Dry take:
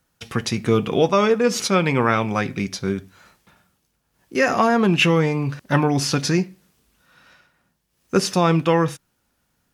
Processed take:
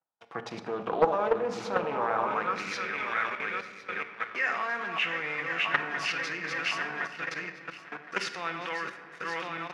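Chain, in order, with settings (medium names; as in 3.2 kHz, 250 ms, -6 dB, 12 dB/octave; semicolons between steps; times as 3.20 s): backward echo that repeats 532 ms, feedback 70%, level -6 dB; high-pass 85 Hz 12 dB/octave; treble shelf 9.4 kHz -6 dB; level held to a coarse grid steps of 14 dB; waveshaping leveller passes 2; band-pass sweep 810 Hz -> 1.9 kHz, 2.14–2.83 s; reverberation RT60 1.4 s, pre-delay 6 ms, DRR 8 dB; loudspeaker Doppler distortion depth 0.32 ms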